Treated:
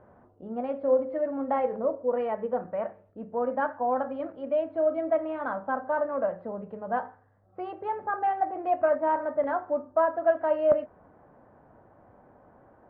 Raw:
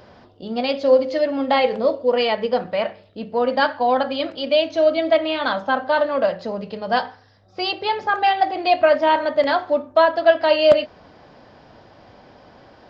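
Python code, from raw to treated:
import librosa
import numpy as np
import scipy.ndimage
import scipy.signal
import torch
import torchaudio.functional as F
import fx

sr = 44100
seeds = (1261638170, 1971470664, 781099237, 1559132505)

y = scipy.signal.sosfilt(scipy.signal.butter(4, 1500.0, 'lowpass', fs=sr, output='sos'), x)
y = F.gain(torch.from_numpy(y), -8.5).numpy()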